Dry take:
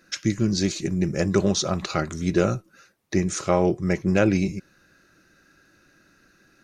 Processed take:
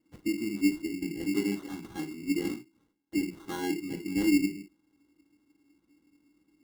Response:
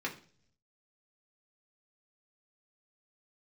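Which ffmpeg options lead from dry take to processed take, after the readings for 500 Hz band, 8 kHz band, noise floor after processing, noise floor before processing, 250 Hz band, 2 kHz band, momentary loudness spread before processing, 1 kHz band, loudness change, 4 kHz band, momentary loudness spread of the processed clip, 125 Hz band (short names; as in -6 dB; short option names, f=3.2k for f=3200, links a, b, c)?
-14.0 dB, -12.5 dB, -73 dBFS, -61 dBFS, -5.0 dB, -7.0 dB, 7 LU, -14.5 dB, -7.5 dB, -10.5 dB, 12 LU, -19.0 dB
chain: -filter_complex "[0:a]asplit=3[a][b][c];[a]bandpass=f=300:t=q:w=8,volume=0dB[d];[b]bandpass=f=870:t=q:w=8,volume=-6dB[e];[c]bandpass=f=2.24k:t=q:w=8,volume=-9dB[f];[d][e][f]amix=inputs=3:normalize=0[g];[1:a]atrim=start_sample=2205,atrim=end_sample=3969[h];[g][h]afir=irnorm=-1:irlink=0,acrusher=samples=18:mix=1:aa=0.000001,volume=-2.5dB"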